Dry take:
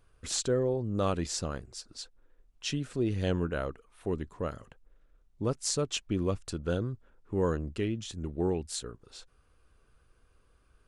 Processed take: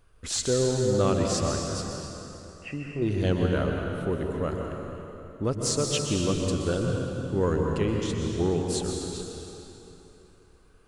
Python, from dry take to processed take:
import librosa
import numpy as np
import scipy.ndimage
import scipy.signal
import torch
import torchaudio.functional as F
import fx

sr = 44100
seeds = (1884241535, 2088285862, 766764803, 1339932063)

p1 = fx.cheby_ripple(x, sr, hz=2800.0, ripple_db=6, at=(1.89, 3.02))
p2 = 10.0 ** (-23.5 / 20.0) * np.tanh(p1 / 10.0 ** (-23.5 / 20.0))
p3 = p1 + (p2 * 10.0 ** (-6.0 / 20.0))
y = fx.rev_plate(p3, sr, seeds[0], rt60_s=3.2, hf_ratio=0.8, predelay_ms=110, drr_db=0.5)